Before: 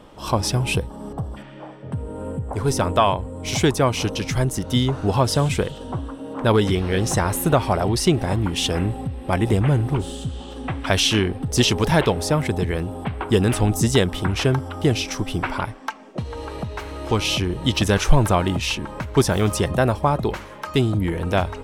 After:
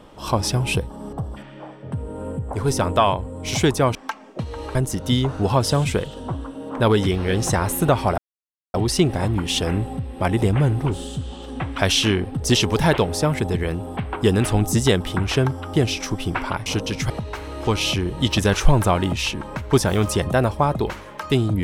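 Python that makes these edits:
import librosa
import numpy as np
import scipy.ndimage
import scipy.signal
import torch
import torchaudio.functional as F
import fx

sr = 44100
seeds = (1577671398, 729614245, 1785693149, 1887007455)

y = fx.edit(x, sr, fx.swap(start_s=3.95, length_s=0.44, other_s=15.74, other_length_s=0.8),
    fx.insert_silence(at_s=7.82, length_s=0.56), tone=tone)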